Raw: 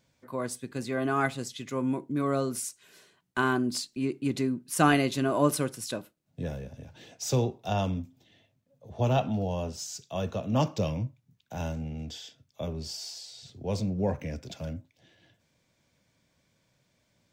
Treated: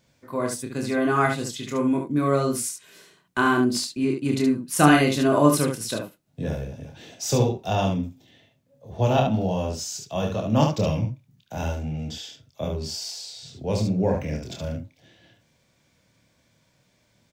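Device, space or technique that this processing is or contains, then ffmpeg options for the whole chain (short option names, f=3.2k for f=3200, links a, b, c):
slapback doubling: -filter_complex "[0:a]asplit=3[a][b][c];[b]adelay=27,volume=-4.5dB[d];[c]adelay=72,volume=-5dB[e];[a][d][e]amix=inputs=3:normalize=0,volume=4dB"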